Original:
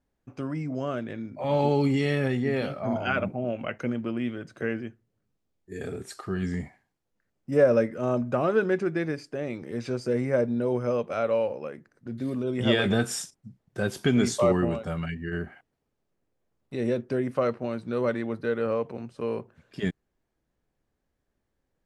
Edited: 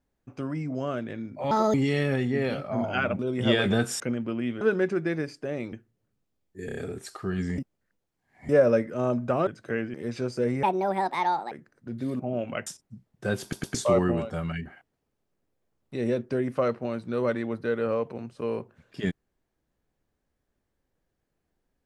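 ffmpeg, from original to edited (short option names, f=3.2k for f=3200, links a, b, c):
-filter_complex "[0:a]asplit=22[a][b][c][d][e][f][g][h][i][j][k][l][m][n][o][p][q][r][s][t][u][v];[a]atrim=end=1.514[w];[b]atrim=start=1.51:end=1.86,asetpts=PTS-STARTPTS,asetrate=67032,aresample=44100[x];[c]atrim=start=1.856:end=3.312[y];[d]atrim=start=12.388:end=13.202[z];[e]atrim=start=3.778:end=4.392[aa];[f]atrim=start=8.508:end=9.632[ab];[g]atrim=start=4.858:end=5.822[ac];[h]atrim=start=5.788:end=5.822[ad];[i]atrim=start=5.788:end=5.822[ae];[j]atrim=start=5.788:end=6.622[af];[k]atrim=start=6.618:end=7.532,asetpts=PTS-STARTPTS,areverse[ag];[l]atrim=start=7.528:end=8.512[ah];[m]atrim=start=4.388:end=4.862[ai];[n]atrim=start=9.628:end=10.324[aj];[o]atrim=start=10.32:end=11.71,asetpts=PTS-STARTPTS,asetrate=69237,aresample=44100[ak];[p]atrim=start=11.706:end=12.392[al];[q]atrim=start=3.308:end=3.782[am];[r]atrim=start=13.198:end=14.062[an];[s]atrim=start=13.948:end=14.062[ao];[t]atrim=start=13.948:end=14.062[ap];[u]atrim=start=14.278:end=15.192[aq];[v]atrim=start=15.448[ar];[w][x]acrossfade=d=0.004:c1=hsin:c2=hsin[as];[as][y]acrossfade=d=0.004:c1=hsin:c2=hsin[at];[at][z]acrossfade=d=0.004:c1=hsin:c2=hsin[au];[au][aa]acrossfade=d=0.004:c1=hsin:c2=hsin[av];[av][ab]acrossfade=d=0.004:c1=hsin:c2=hsin[aw];[aw][ac]acrossfade=d=0.004:c1=hsin:c2=hsin[ax];[ax][ad]acrossfade=d=0.004:c1=hsin:c2=hsin[ay];[ay][ae]acrossfade=d=0.004:c1=hsin:c2=hsin[az];[az][af]acrossfade=d=0.004:c1=hsin:c2=hsin[ba];[ba][ag]acrossfade=d=0.004:c1=hsin:c2=hsin[bb];[bb][ah]acrossfade=d=0.004:c1=hsin:c2=hsin[bc];[bc][ai]acrossfade=d=0.004:c1=hsin:c2=hsin[bd];[bd][aj]acrossfade=d=0.004:c1=hsin:c2=hsin[be];[be][ak]acrossfade=d=0.004:c1=hsin:c2=hsin[bf];[bf][al]acrossfade=d=0.004:c1=hsin:c2=hsin[bg];[bg][am]acrossfade=d=0.004:c1=hsin:c2=hsin[bh];[bh][an]acrossfade=d=0.004:c1=hsin:c2=hsin[bi];[bi][ao]acrossfade=d=0.004:c1=hsin:c2=hsin[bj];[bj][ap]acrossfade=d=0.004:c1=hsin:c2=hsin[bk];[bk][aq]acrossfade=d=0.004:c1=hsin:c2=hsin[bl];[bl][ar]acrossfade=d=0.004:c1=hsin:c2=hsin"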